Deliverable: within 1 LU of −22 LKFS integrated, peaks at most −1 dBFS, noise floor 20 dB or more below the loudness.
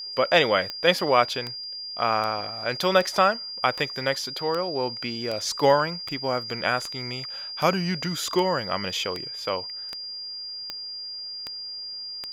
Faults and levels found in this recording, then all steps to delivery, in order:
number of clicks 16; interfering tone 4,800 Hz; level of the tone −33 dBFS; integrated loudness −25.5 LKFS; sample peak −3.0 dBFS; target loudness −22.0 LKFS
→ click removal
notch filter 4,800 Hz, Q 30
level +3.5 dB
brickwall limiter −1 dBFS

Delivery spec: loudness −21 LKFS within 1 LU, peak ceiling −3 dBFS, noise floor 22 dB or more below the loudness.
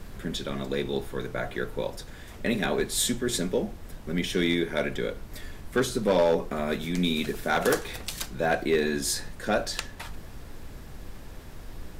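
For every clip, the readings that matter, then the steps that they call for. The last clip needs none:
share of clipped samples 0.3%; peaks flattened at −16.0 dBFS; background noise floor −43 dBFS; target noise floor −50 dBFS; integrated loudness −28.0 LKFS; sample peak −16.0 dBFS; target loudness −21.0 LKFS
→ clipped peaks rebuilt −16 dBFS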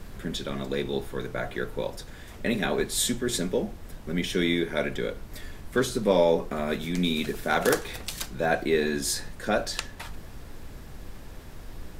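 share of clipped samples 0.0%; background noise floor −43 dBFS; target noise floor −50 dBFS
→ noise reduction from a noise print 7 dB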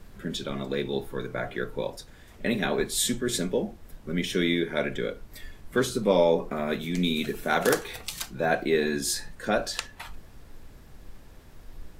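background noise floor −50 dBFS; integrated loudness −28.0 LKFS; sample peak −7.0 dBFS; target loudness −21.0 LKFS
→ level +7 dB
brickwall limiter −3 dBFS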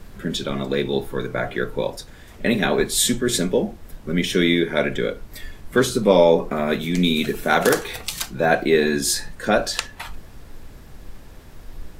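integrated loudness −21.0 LKFS; sample peak −3.0 dBFS; background noise floor −43 dBFS

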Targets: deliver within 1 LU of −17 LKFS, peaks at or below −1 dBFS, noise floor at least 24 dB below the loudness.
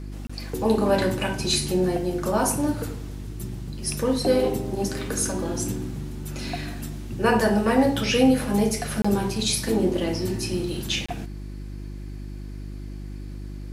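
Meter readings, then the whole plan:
number of dropouts 3; longest dropout 25 ms; mains hum 50 Hz; hum harmonics up to 350 Hz; level of the hum −32 dBFS; integrated loudness −24.5 LKFS; sample peak −6.0 dBFS; target loudness −17.0 LKFS
→ repair the gap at 0:00.27/0:09.02/0:11.06, 25 ms
hum removal 50 Hz, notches 7
level +7.5 dB
brickwall limiter −1 dBFS

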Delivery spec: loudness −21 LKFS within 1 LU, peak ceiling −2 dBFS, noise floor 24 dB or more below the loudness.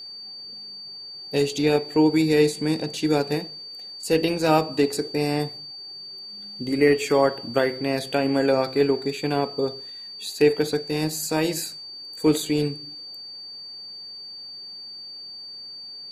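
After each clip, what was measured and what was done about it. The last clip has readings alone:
interfering tone 4,600 Hz; level of the tone −36 dBFS; integrated loudness −23.0 LKFS; sample peak −5.5 dBFS; target loudness −21.0 LKFS
→ notch filter 4,600 Hz, Q 30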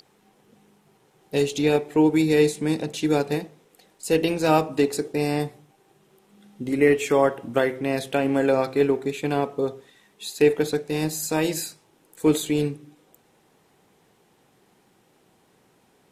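interfering tone none found; integrated loudness −23.0 LKFS; sample peak −5.5 dBFS; target loudness −21.0 LKFS
→ level +2 dB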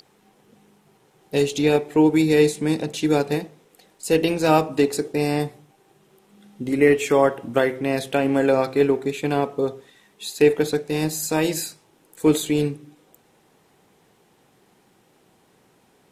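integrated loudness −21.0 LKFS; sample peak −3.5 dBFS; background noise floor −60 dBFS

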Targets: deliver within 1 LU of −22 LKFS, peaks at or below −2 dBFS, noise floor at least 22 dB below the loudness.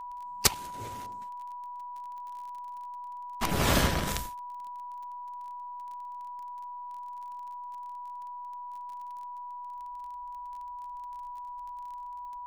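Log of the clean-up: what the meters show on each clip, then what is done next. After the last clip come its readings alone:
crackle rate 26 per second; interfering tone 980 Hz; level of the tone −38 dBFS; integrated loudness −35.5 LKFS; sample peak −7.0 dBFS; target loudness −22.0 LKFS
→ click removal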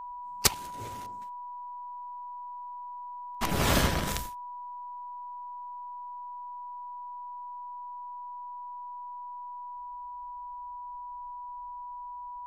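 crackle rate 0.080 per second; interfering tone 980 Hz; level of the tone −38 dBFS
→ notch filter 980 Hz, Q 30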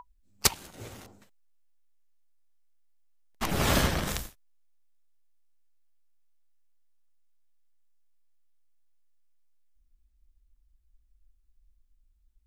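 interfering tone none found; integrated loudness −28.0 LKFS; sample peak −7.0 dBFS; target loudness −22.0 LKFS
→ level +6 dB
brickwall limiter −2 dBFS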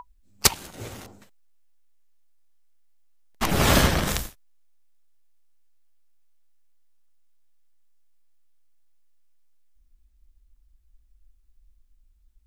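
integrated loudness −22.5 LKFS; sample peak −2.0 dBFS; background noise floor −61 dBFS

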